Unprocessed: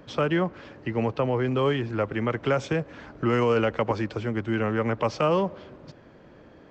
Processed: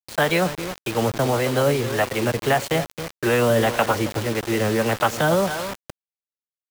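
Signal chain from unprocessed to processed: on a send: feedback delay 270 ms, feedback 20%, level -12 dB; on the sum: harmonic tremolo 1.7 Hz, depth 50%, crossover 410 Hz; formant shift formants +4 st; word length cut 6-bit, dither none; trim +6.5 dB

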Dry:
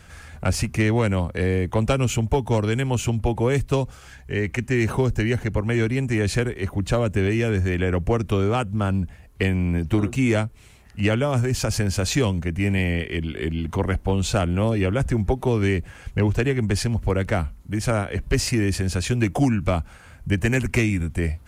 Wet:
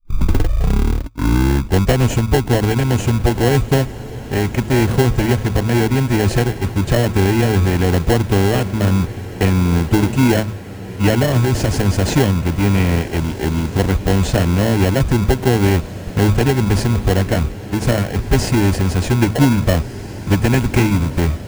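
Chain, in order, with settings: tape start-up on the opening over 2.05 s; band-stop 1.3 kHz, Q 7.2; de-hum 108.7 Hz, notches 2; in parallel at +3 dB: sample-rate reducer 1.2 kHz, jitter 0%; on the sum: gate -23 dBFS, range -15 dB; on a send: echo that smears into a reverb 1614 ms, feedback 58%, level -15 dB

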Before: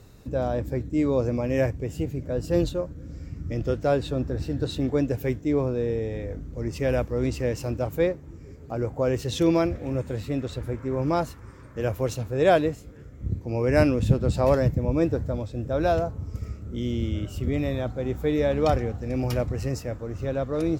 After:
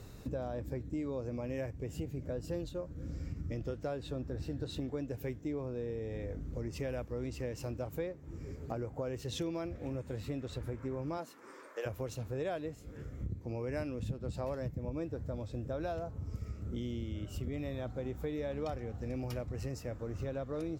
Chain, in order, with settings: 11.17–11.85 s: high-pass 180 Hz -> 510 Hz 24 dB/octave; compression 6:1, threshold -36 dBFS, peak gain reduction 21 dB

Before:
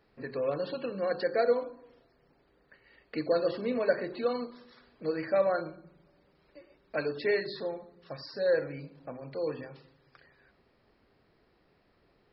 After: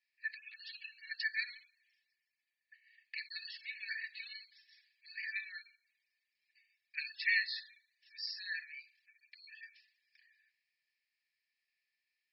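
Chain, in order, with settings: rippled Chebyshev high-pass 1.7 kHz, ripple 9 dB; three bands expanded up and down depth 40%; trim +7 dB

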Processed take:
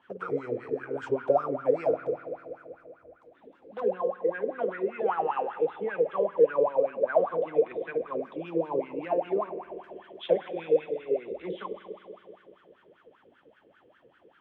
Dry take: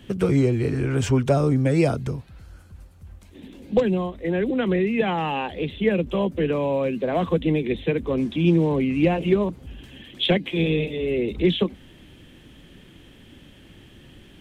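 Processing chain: spring tank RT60 3.1 s, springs 48 ms, chirp 25 ms, DRR 7 dB; wah-wah 5.1 Hz 450–1500 Hz, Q 12; trim +9 dB

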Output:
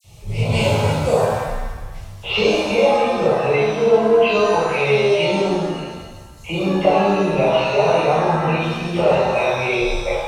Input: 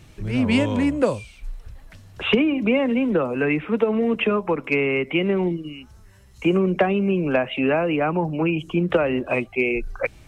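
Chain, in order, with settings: static phaser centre 670 Hz, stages 4; phase dispersion lows, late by 45 ms, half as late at 2.4 kHz; pitch-shifted reverb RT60 1.2 s, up +7 st, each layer -8 dB, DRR -11 dB; trim -2 dB

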